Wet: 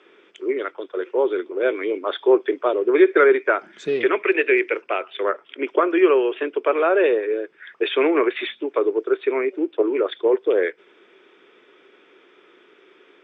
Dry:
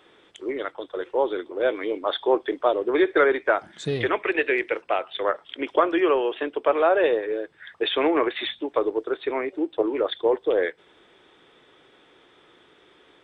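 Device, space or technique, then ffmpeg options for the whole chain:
television speaker: -filter_complex "[0:a]asettb=1/sr,asplit=3[link_01][link_02][link_03];[link_01]atrim=end=5.294[link_04];[link_02]atrim=start=5.29:end=5.97,asetpts=PTS-STARTPTS,afade=type=in:duration=0.004:curve=qsin,afade=type=out:start_time=0.676:duration=0.004:curve=qsin,equalizer=frequency=4300:width_type=o:width=1.5:gain=-5[link_05];[link_03]atrim=start=5.966[link_06];[link_04][link_05]acrossfade=duration=0.004:curve1=hsin:curve2=qsin[link_07];[link_07][link_06]acrossfade=duration=0.004:curve1=qsin:curve2=hsin,highpass=frequency=200:width=0.5412,highpass=frequency=200:width=1.3066,equalizer=frequency=390:width_type=q:width=4:gain=8,equalizer=frequency=790:width_type=q:width=4:gain=-5,equalizer=frequency=1400:width_type=q:width=4:gain=4,equalizer=frequency=2400:width_type=q:width=4:gain=7,equalizer=frequency=4000:width_type=q:width=4:gain=-8,lowpass=frequency=6600:width=0.5412,lowpass=frequency=6600:width=1.3066"

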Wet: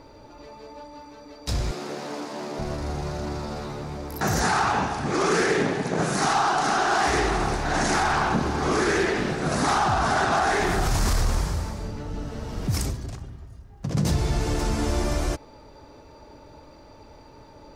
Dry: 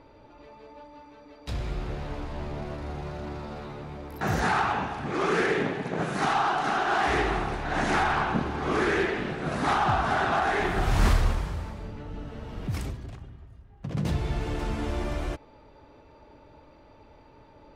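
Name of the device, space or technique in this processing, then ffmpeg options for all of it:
over-bright horn tweeter: -filter_complex "[0:a]highshelf=frequency=4100:width_type=q:width=1.5:gain=8,alimiter=limit=-20dB:level=0:latency=1:release=24,asettb=1/sr,asplit=3[link_01][link_02][link_03];[link_01]atrim=end=1.714[link_04];[link_02]atrim=start=1.71:end=2.59,asetpts=PTS-STARTPTS,afade=type=in:duration=0.004:curve=qsin,afade=type=out:start_time=0.876:duration=0.004:curve=qsin,highpass=frequency=210:width=0.5412,highpass=frequency=210:width=1.3066[link_05];[link_03]atrim=start=2.586[link_06];[link_04][link_05]acrossfade=duration=0.004:curve1=hsin:curve2=qsin[link_07];[link_07][link_06]acrossfade=duration=0.004:curve1=qsin:curve2=hsin,volume=5.5dB"

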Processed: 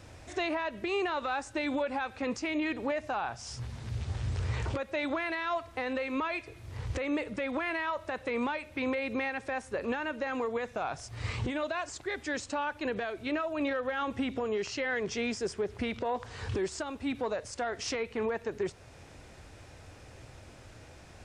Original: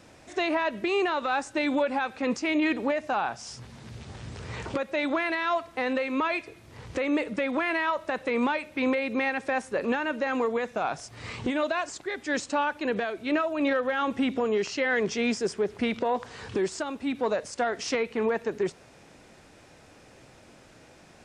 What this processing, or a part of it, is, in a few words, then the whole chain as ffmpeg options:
car stereo with a boomy subwoofer: -af "lowshelf=frequency=130:width_type=q:width=1.5:gain=9,alimiter=limit=-23.5dB:level=0:latency=1:release=377"

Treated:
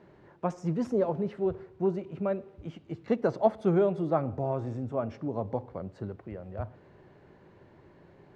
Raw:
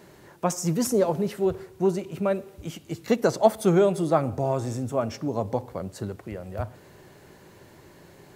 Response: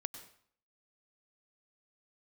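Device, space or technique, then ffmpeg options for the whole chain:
phone in a pocket: -af "lowpass=3400,highshelf=frequency=2100:gain=-9,volume=-4.5dB"

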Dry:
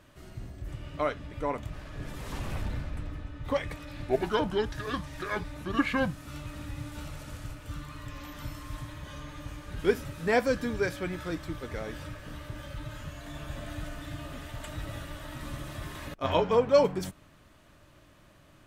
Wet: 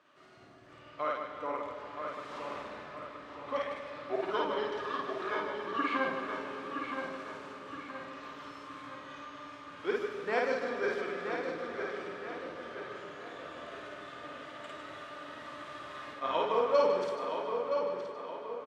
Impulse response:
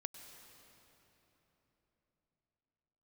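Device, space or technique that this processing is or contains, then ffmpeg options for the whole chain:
station announcement: -filter_complex "[0:a]highpass=360,lowpass=4600,equalizer=frequency=1200:width_type=o:width=0.34:gain=7,aecho=1:1:52.48|151.6:0.891|0.447[link_01];[1:a]atrim=start_sample=2205[link_02];[link_01][link_02]afir=irnorm=-1:irlink=0,asplit=2[link_03][link_04];[link_04]adelay=970,lowpass=frequency=4000:poles=1,volume=-6dB,asplit=2[link_05][link_06];[link_06]adelay=970,lowpass=frequency=4000:poles=1,volume=0.48,asplit=2[link_07][link_08];[link_08]adelay=970,lowpass=frequency=4000:poles=1,volume=0.48,asplit=2[link_09][link_10];[link_10]adelay=970,lowpass=frequency=4000:poles=1,volume=0.48,asplit=2[link_11][link_12];[link_12]adelay=970,lowpass=frequency=4000:poles=1,volume=0.48,asplit=2[link_13][link_14];[link_14]adelay=970,lowpass=frequency=4000:poles=1,volume=0.48[link_15];[link_03][link_05][link_07][link_09][link_11][link_13][link_15]amix=inputs=7:normalize=0,volume=-3dB"

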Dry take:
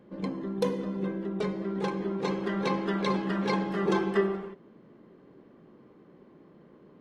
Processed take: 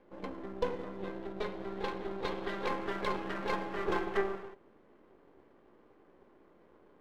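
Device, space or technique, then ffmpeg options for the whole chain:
crystal radio: -filter_complex "[0:a]highpass=360,lowpass=3200,aeval=exprs='if(lt(val(0),0),0.251*val(0),val(0))':channel_layout=same,asettb=1/sr,asplit=3[link_01][link_02][link_03];[link_01]atrim=end=0.994[link_04];[link_02]atrim=start=0.99:end=2.66,asetpts=PTS-STARTPTS,afade=type=in:duration=0.004:curve=qsin,afade=type=out:start_time=1.666:duration=0.004:curve=qsin,equalizer=frequency=3800:width=2.4:gain=6[link_05];[link_03]atrim=start=2.656[link_06];[link_04][link_05]acrossfade=duration=0.004:curve1=hsin:curve2=qsin[link_07];[link_07][link_06]acrossfade=duration=0.004:curve1=qsin:curve2=hsin"

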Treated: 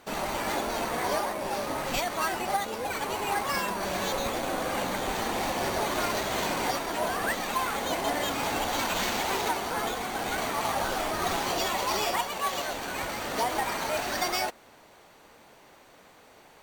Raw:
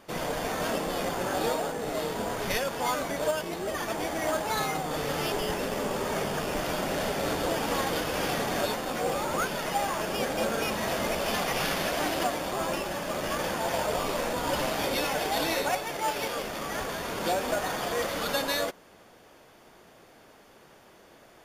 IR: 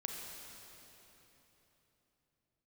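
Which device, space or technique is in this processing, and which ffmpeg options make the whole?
nightcore: -af "asetrate=56889,aresample=44100"

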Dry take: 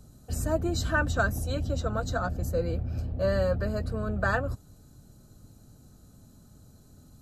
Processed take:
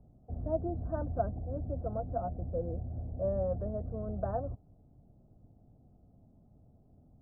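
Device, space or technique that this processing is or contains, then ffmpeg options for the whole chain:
under water: -af "lowpass=frequency=810:width=0.5412,lowpass=frequency=810:width=1.3066,equalizer=frequency=710:width_type=o:width=0.3:gain=8,volume=-7dB"

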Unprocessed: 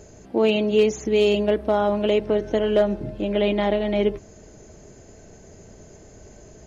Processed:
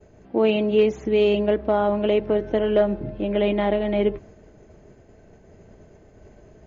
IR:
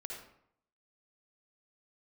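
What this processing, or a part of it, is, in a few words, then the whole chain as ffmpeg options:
hearing-loss simulation: -af "lowpass=2900,agate=range=-33dB:threshold=-42dB:ratio=3:detection=peak"

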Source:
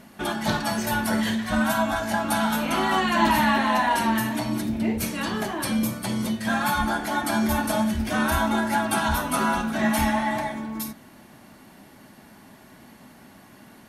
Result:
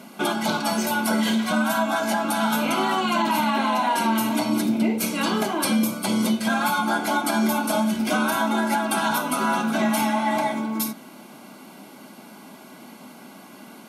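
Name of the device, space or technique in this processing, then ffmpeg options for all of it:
PA system with an anti-feedback notch: -af "highpass=frequency=180:width=0.5412,highpass=frequency=180:width=1.3066,asuperstop=centerf=1800:order=8:qfactor=6,alimiter=limit=-18.5dB:level=0:latency=1:release=311,volume=6dB"

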